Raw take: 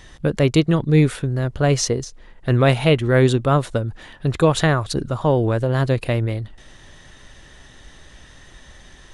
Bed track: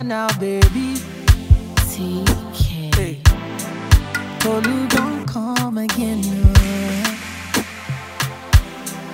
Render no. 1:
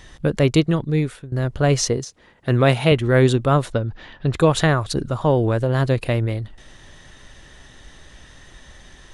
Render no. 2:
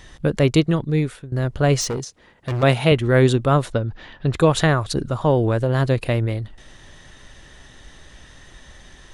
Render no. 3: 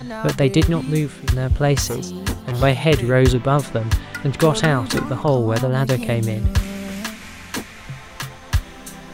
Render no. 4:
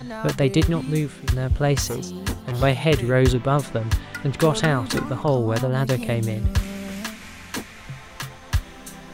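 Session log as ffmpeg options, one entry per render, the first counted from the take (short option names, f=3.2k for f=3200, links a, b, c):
-filter_complex "[0:a]asettb=1/sr,asplit=3[a][b][c];[a]atrim=end=1.974[d];[b]atrim=start=1.97:end=2.92,asetpts=PTS-STARTPTS,afade=t=in:d=0.004:c=qsin,afade=t=out:st=0.946:d=0.004:c=qsin,highpass=95[e];[c]atrim=start=2.916[f];[d][e]acrossfade=d=0.004:c1=hsin:c2=qsin[g];[g][f]acrossfade=d=0.004:c1=qsin:c2=hsin,asettb=1/sr,asplit=3[h][i][j];[h]atrim=end=3.724[k];[i]atrim=start=3.72:end=4.33,asetpts=PTS-STARTPTS,afade=t=in:d=0.004:c=qsin,afade=t=out:st=0.606:d=0.004:c=qsin,lowpass=f=5.4k:w=0.5412,lowpass=f=5.4k:w=1.3066[l];[j]atrim=start=4.326[m];[k][l]acrossfade=d=0.004:c1=hsin:c2=qsin[n];[n][m]acrossfade=d=0.004:c1=qsin:c2=hsin,asplit=2[o][p];[o]atrim=end=1.32,asetpts=PTS-STARTPTS,afade=t=out:st=0.55:d=0.77:silence=0.141254[q];[p]atrim=start=1.32,asetpts=PTS-STARTPTS,afade=t=in:d=0.004:c=hsin:silence=0.141254[r];[q][r]concat=n=2:v=0:a=1"
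-filter_complex "[0:a]asettb=1/sr,asplit=3[a][b][c];[a]atrim=end=1.814[d];[b]atrim=start=1.81:end=2.63,asetpts=PTS-STARTPTS,afade=t=in:d=0.004:c=qsin,afade=t=out:st=0.816:d=0.004:c=qsin,asoftclip=type=hard:threshold=-21dB[e];[c]atrim=start=2.626[f];[d][e]acrossfade=d=0.004:c1=hsin:c2=qsin[g];[g][f]acrossfade=d=0.004:c1=qsin:c2=hsin"
-filter_complex "[1:a]volume=-8dB[a];[0:a][a]amix=inputs=2:normalize=0"
-af "volume=-3dB"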